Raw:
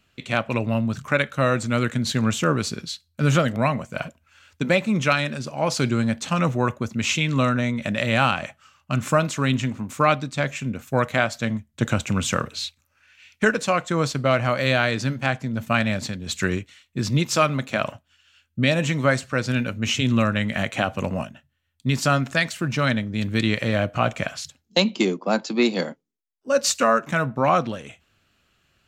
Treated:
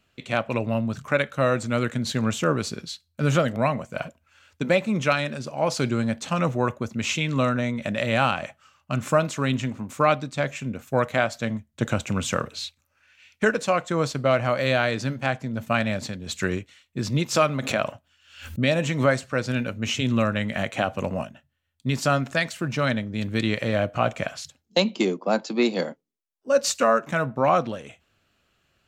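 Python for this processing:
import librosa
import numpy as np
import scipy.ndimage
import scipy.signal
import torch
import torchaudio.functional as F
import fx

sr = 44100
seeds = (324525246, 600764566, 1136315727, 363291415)

y = fx.peak_eq(x, sr, hz=570.0, db=4.0, octaves=1.5)
y = fx.pre_swell(y, sr, db_per_s=97.0, at=(17.34, 19.06), fade=0.02)
y = F.gain(torch.from_numpy(y), -3.5).numpy()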